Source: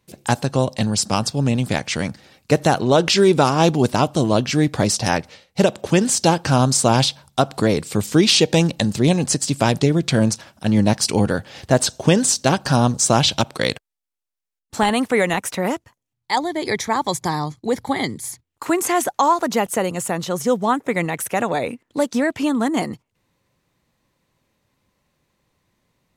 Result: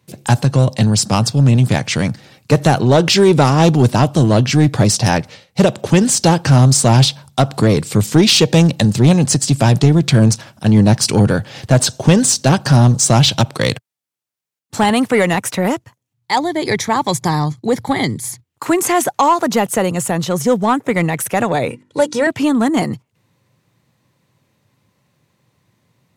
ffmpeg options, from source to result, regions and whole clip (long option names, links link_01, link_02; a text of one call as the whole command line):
ffmpeg -i in.wav -filter_complex "[0:a]asettb=1/sr,asplit=3[link_01][link_02][link_03];[link_01]atrim=end=21.704[link_04];[link_02]atrim=start=21.7:end=22.27,asetpts=PTS-STARTPTS,afade=type=in:duration=0.004:curve=qsin,afade=type=out:start_time=0.566:duration=0.004:curve=qsin,lowpass=frequency=11000:width=0.5412,lowpass=frequency=11000:width=1.3066,bandreject=frequency=50:width_type=h:width=6,bandreject=frequency=100:width_type=h:width=6,bandreject=frequency=150:width_type=h:width=6,bandreject=frequency=200:width_type=h:width=6,bandreject=frequency=250:width_type=h:width=6,bandreject=frequency=300:width_type=h:width=6,bandreject=frequency=350:width_type=h:width=6,aecho=1:1:2.1:0.67,atrim=end_sample=25137[link_05];[link_03]atrim=start=22.266[link_06];[link_04][link_05]acrossfade=duration=0.004:curve1=hsin:curve2=qsin[link_07];[link_07][link_06]acrossfade=duration=0.004:curve1=qsin:curve2=hsin,highpass=frequency=85:width=0.5412,highpass=frequency=85:width=1.3066,equalizer=frequency=120:width_type=o:width=0.98:gain=8,acontrast=62,volume=-1.5dB" out.wav